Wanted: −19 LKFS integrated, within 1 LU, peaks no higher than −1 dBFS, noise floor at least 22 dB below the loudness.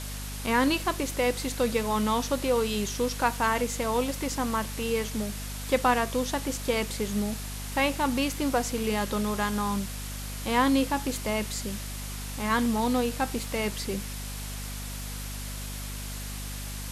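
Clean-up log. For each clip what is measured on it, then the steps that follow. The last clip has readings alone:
mains hum 50 Hz; hum harmonics up to 250 Hz; level of the hum −35 dBFS; background noise floor −36 dBFS; target noise floor −51 dBFS; integrated loudness −28.5 LKFS; sample peak −10.0 dBFS; target loudness −19.0 LKFS
→ mains-hum notches 50/100/150/200/250 Hz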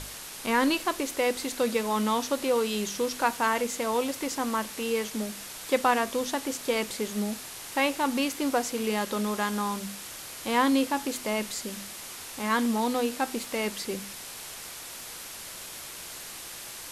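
mains hum none found; background noise floor −42 dBFS; target noise floor −51 dBFS
→ noise reduction from a noise print 9 dB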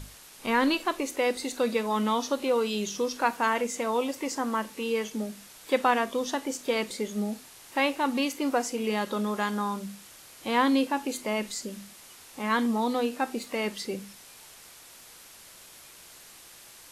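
background noise floor −51 dBFS; integrated loudness −28.5 LKFS; sample peak −11.0 dBFS; target loudness −19.0 LKFS
→ level +9.5 dB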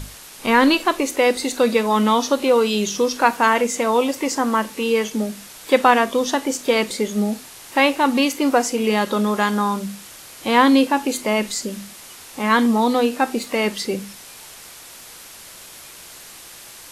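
integrated loudness −19.0 LKFS; sample peak −1.5 dBFS; background noise floor −41 dBFS

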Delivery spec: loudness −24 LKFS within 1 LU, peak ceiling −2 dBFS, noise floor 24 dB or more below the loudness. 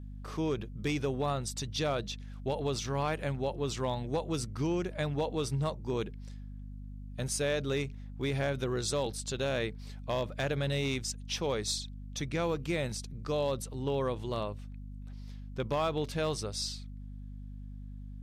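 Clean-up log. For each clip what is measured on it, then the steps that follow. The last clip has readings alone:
share of clipped samples 0.4%; peaks flattened at −23.5 dBFS; mains hum 50 Hz; hum harmonics up to 250 Hz; level of the hum −41 dBFS; integrated loudness −34.0 LKFS; sample peak −23.5 dBFS; target loudness −24.0 LKFS
→ clipped peaks rebuilt −23.5 dBFS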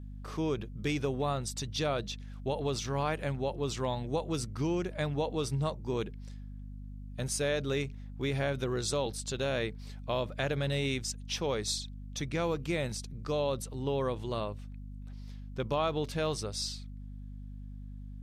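share of clipped samples 0.0%; mains hum 50 Hz; hum harmonics up to 250 Hz; level of the hum −41 dBFS
→ hum removal 50 Hz, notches 5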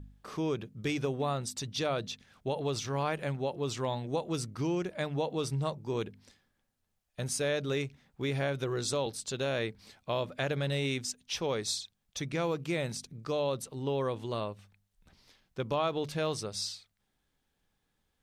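mains hum none found; integrated loudness −34.0 LKFS; sample peak −18.0 dBFS; target loudness −24.0 LKFS
→ level +10 dB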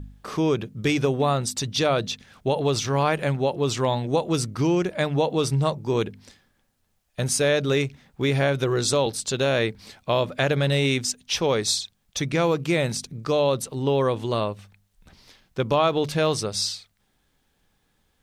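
integrated loudness −24.0 LKFS; sample peak −8.0 dBFS; background noise floor −70 dBFS

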